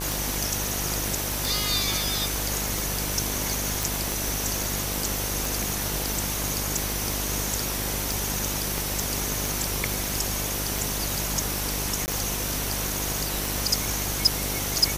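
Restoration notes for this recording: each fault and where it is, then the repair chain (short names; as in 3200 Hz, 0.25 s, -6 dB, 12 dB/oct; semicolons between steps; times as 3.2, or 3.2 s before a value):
buzz 50 Hz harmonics 21 -33 dBFS
tick 45 rpm
3.83 pop
8.78 pop
12.06–12.08 gap 19 ms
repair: de-click; de-hum 50 Hz, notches 21; interpolate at 12.06, 19 ms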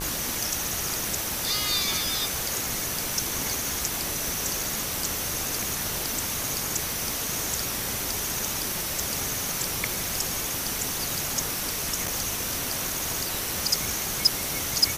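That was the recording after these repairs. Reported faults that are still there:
none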